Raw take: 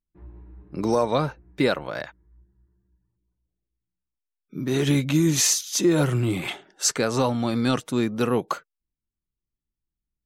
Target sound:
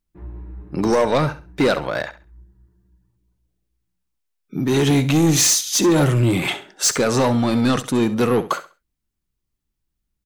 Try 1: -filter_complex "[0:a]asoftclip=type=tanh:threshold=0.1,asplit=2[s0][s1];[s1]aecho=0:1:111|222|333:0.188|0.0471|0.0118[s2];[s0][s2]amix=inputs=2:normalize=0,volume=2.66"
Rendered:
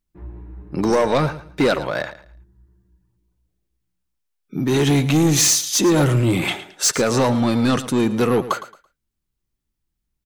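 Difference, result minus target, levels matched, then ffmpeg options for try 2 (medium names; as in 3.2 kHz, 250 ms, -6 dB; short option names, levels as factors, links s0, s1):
echo 44 ms late
-filter_complex "[0:a]asoftclip=type=tanh:threshold=0.1,asplit=2[s0][s1];[s1]aecho=0:1:67|134|201:0.188|0.0471|0.0118[s2];[s0][s2]amix=inputs=2:normalize=0,volume=2.66"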